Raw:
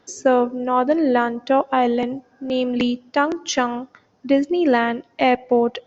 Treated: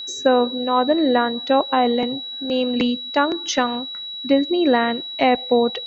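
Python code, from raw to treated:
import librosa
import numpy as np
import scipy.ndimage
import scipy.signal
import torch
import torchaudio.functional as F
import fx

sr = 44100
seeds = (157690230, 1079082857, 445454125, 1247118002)

y = fx.env_lowpass_down(x, sr, base_hz=2500.0, full_db=-11.5)
y = y + 10.0 ** (-29.0 / 20.0) * np.sin(2.0 * np.pi * 3900.0 * np.arange(len(y)) / sr)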